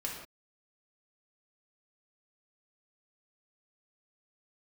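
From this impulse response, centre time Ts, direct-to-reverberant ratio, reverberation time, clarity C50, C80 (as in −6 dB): 43 ms, −3.0 dB, non-exponential decay, 3.0 dB, 6.0 dB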